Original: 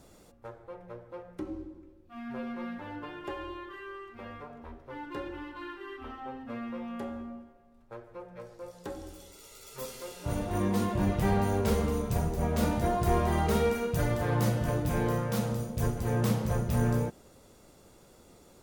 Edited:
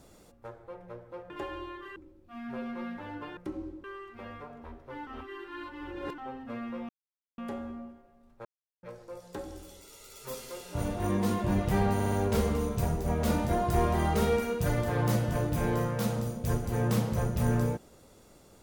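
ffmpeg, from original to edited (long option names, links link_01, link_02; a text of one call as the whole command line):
ffmpeg -i in.wav -filter_complex "[0:a]asplit=13[link_01][link_02][link_03][link_04][link_05][link_06][link_07][link_08][link_09][link_10][link_11][link_12][link_13];[link_01]atrim=end=1.302[link_14];[link_02]atrim=start=3.178:end=3.842[link_15];[link_03]atrim=start=1.768:end=3.182[link_16];[link_04]atrim=start=1.298:end=1.772[link_17];[link_05]atrim=start=3.838:end=5.072[link_18];[link_06]atrim=start=5.068:end=6.182,asetpts=PTS-STARTPTS,areverse[link_19];[link_07]atrim=start=6.178:end=6.89,asetpts=PTS-STARTPTS,afade=type=out:start_time=0.708:duration=0.004:curve=hsin,apad=pad_dur=0.49[link_20];[link_08]atrim=start=6.89:end=7.96,asetpts=PTS-STARTPTS,afade=type=in:duration=0.004:curve=hsin,afade=type=out:start_time=1.066:duration=0.004:curve=hsin[link_21];[link_09]atrim=start=7.96:end=8.34,asetpts=PTS-STARTPTS,volume=0[link_22];[link_10]atrim=start=8.34:end=11.512,asetpts=PTS-STARTPTS,afade=type=in:duration=0.004:curve=hsin[link_23];[link_11]atrim=start=11.448:end=11.512[link_24];[link_12]atrim=start=11.448:end=11.512[link_25];[link_13]atrim=start=11.448[link_26];[link_14][link_15]acrossfade=duration=0.004:curve1=hsin:curve2=hsin[link_27];[link_27][link_16]acrossfade=duration=0.004:curve1=hsin:curve2=hsin[link_28];[link_28][link_17]acrossfade=duration=0.004:curve1=hsin:curve2=hsin[link_29];[link_29][link_18]acrossfade=duration=0.004:curve1=hsin:curve2=hsin[link_30];[link_30][link_19]acrossfade=duration=0.004:curve1=hsin:curve2=hsin[link_31];[link_20][link_21][link_22][link_23]concat=n=4:v=0:a=1[link_32];[link_31][link_32]acrossfade=duration=0.004:curve1=hsin:curve2=hsin[link_33];[link_33][link_24]acrossfade=duration=0.004:curve1=hsin:curve2=hsin[link_34];[link_34][link_25]acrossfade=duration=0.004:curve1=hsin:curve2=hsin[link_35];[link_35][link_26]acrossfade=duration=0.004:curve1=hsin:curve2=hsin" out.wav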